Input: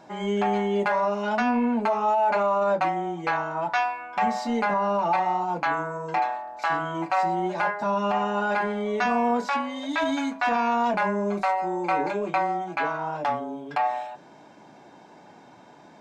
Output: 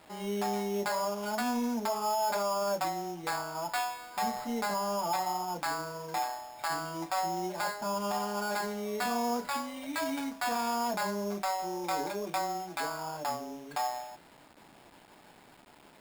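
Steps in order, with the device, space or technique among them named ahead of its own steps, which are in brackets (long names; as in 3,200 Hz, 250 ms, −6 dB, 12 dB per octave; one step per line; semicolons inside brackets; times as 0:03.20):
early 8-bit sampler (sample-rate reduction 6,000 Hz, jitter 0%; bit reduction 8 bits)
level −8 dB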